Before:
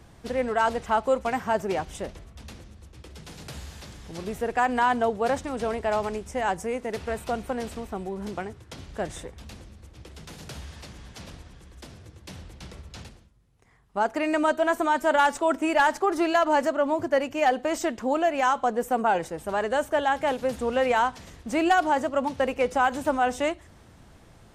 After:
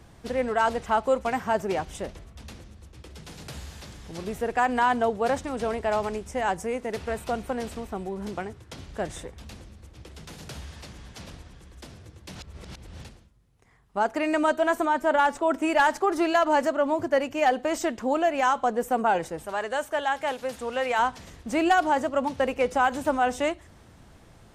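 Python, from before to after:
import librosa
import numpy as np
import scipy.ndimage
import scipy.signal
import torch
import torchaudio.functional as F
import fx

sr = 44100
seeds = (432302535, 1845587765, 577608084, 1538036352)

y = fx.high_shelf(x, sr, hz=2700.0, db=-7.5, at=(14.85, 15.54))
y = fx.low_shelf(y, sr, hz=470.0, db=-10.0, at=(19.46, 20.99))
y = fx.edit(y, sr, fx.reverse_span(start_s=12.35, length_s=0.66), tone=tone)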